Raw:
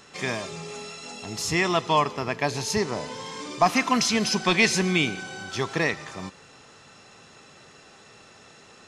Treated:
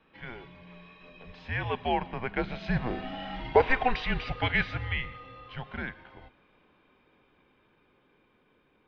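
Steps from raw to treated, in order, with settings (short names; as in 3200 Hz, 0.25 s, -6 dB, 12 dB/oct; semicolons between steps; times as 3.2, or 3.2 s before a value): Doppler pass-by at 3.27, 8 m/s, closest 6 m; band noise 460–730 Hz -71 dBFS; mistuned SSB -250 Hz 210–3500 Hz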